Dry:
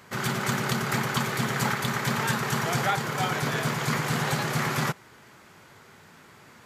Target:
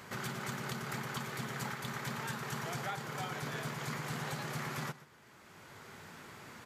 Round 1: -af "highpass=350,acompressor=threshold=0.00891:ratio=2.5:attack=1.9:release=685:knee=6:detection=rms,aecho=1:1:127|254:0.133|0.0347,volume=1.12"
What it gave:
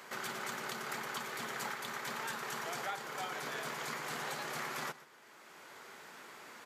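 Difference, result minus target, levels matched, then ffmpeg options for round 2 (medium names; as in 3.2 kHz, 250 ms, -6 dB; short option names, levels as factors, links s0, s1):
250 Hz band -6.5 dB
-af "acompressor=threshold=0.00891:ratio=2.5:attack=1.9:release=685:knee=6:detection=rms,aecho=1:1:127|254:0.133|0.0347,volume=1.12"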